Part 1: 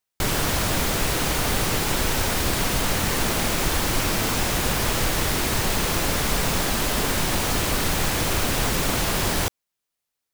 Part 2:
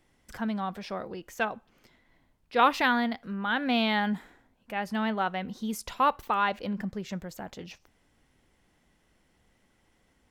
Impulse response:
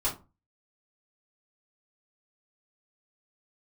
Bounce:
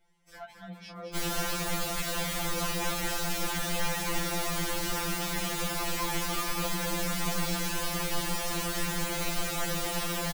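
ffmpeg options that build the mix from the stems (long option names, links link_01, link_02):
-filter_complex "[0:a]adelay=950,volume=-6dB[link_01];[1:a]acompressor=threshold=-34dB:ratio=4,flanger=delay=16:depth=6:speed=0.56,volume=31dB,asoftclip=hard,volume=-31dB,volume=1.5dB,asplit=2[link_02][link_03];[link_03]volume=-5.5dB,aecho=0:1:218:1[link_04];[link_01][link_02][link_04]amix=inputs=3:normalize=0,bandreject=frequency=50:width_type=h:width=6,bandreject=frequency=100:width_type=h:width=6,bandreject=frequency=150:width_type=h:width=6,bandreject=frequency=200:width_type=h:width=6,bandreject=frequency=250:width_type=h:width=6,bandreject=frequency=300:width_type=h:width=6,bandreject=frequency=350:width_type=h:width=6,afftfilt=real='re*2.83*eq(mod(b,8),0)':imag='im*2.83*eq(mod(b,8),0)':win_size=2048:overlap=0.75"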